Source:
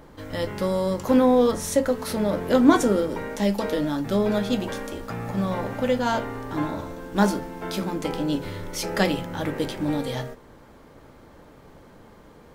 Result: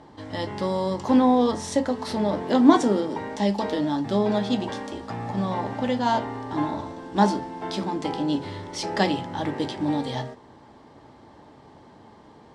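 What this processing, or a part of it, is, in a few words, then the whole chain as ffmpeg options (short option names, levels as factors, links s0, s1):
car door speaker: -filter_complex "[0:a]highpass=95,equalizer=f=170:t=q:w=4:g=-5,equalizer=f=510:t=q:w=4:g=-7,equalizer=f=850:t=q:w=4:g=5,equalizer=f=1400:t=q:w=4:g=-8,equalizer=f=2400:t=q:w=4:g=-6,equalizer=f=6600:t=q:w=4:g=-6,lowpass=f=7500:w=0.5412,lowpass=f=7500:w=1.3066,asettb=1/sr,asplit=3[s0][s1][s2];[s0]atrim=end=2.424[s3];[s1]atrim=start=2.42:end=3.17,asetpts=PTS-STARTPTS,afade=t=in:d=0.004:c=qsin,afade=t=out:st=0.746:d=0.004:c=qsin,highpass=f=120:w=0.5412,highpass=f=120:w=1.3066[s4];[s2]atrim=start=3.166[s5];[s3][s4]acrossfade=d=0.004:c1=hsin:c2=qsin[s6];[s6][s5]acrossfade=d=0.004:c1=qsin:c2=hsin,volume=1.19"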